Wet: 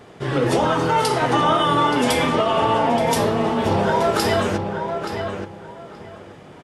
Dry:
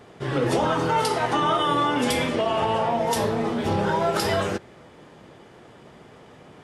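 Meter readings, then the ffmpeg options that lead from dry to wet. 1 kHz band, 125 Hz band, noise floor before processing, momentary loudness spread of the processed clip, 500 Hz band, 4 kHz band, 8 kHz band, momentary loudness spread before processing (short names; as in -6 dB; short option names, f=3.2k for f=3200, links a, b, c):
+4.5 dB, +4.5 dB, -49 dBFS, 15 LU, +4.5 dB, +4.0 dB, +3.5 dB, 4 LU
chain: -filter_complex "[0:a]asplit=2[a][b];[b]adelay=876,lowpass=f=2.6k:p=1,volume=-6dB,asplit=2[c][d];[d]adelay=876,lowpass=f=2.6k:p=1,volume=0.22,asplit=2[e][f];[f]adelay=876,lowpass=f=2.6k:p=1,volume=0.22[g];[a][c][e][g]amix=inputs=4:normalize=0,volume=3.5dB"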